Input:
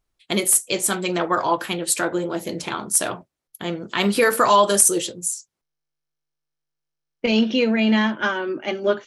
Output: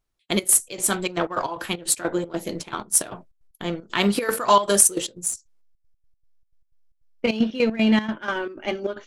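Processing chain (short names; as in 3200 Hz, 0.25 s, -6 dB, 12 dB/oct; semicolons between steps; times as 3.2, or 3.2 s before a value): in parallel at -8 dB: backlash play -18 dBFS; on the sum: step gate "xx.x.xx.xxx.x.x." 154 bpm -12 dB; gain -2.5 dB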